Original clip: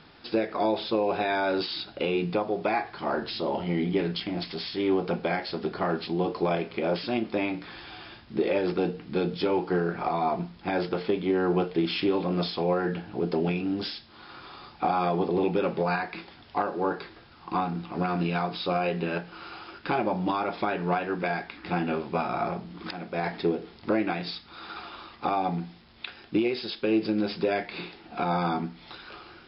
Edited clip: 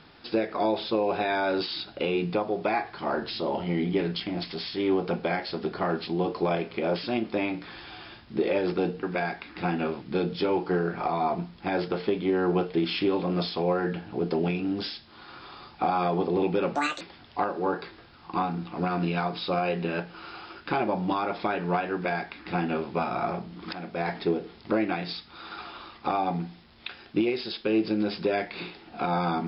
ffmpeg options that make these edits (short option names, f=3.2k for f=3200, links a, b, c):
-filter_complex "[0:a]asplit=5[a][b][c][d][e];[a]atrim=end=9.032[f];[b]atrim=start=21.108:end=22.102[g];[c]atrim=start=9.028:end=15.764[h];[d]atrim=start=15.76:end=16.19,asetpts=PTS-STARTPTS,asetrate=73206,aresample=44100,atrim=end_sample=11423,asetpts=PTS-STARTPTS[i];[e]atrim=start=16.186[j];[f][g]acrossfade=d=0.004:c1=hsin:c2=hsin[k];[k][h]acrossfade=d=0.004:c1=hsin:c2=hsin[l];[l][i]acrossfade=d=0.004:c1=hsin:c2=hsin[m];[m][j]acrossfade=d=0.004:c1=hsin:c2=hsin"